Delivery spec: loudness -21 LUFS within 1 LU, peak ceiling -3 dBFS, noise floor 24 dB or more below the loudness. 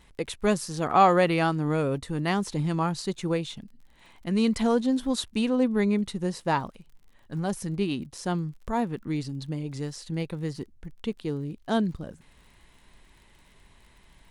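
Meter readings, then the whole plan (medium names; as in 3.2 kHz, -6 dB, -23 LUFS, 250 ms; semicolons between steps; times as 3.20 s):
tick rate 42 per s; loudness -27.5 LUFS; peak level -8.0 dBFS; loudness target -21.0 LUFS
-> de-click; trim +6.5 dB; peak limiter -3 dBFS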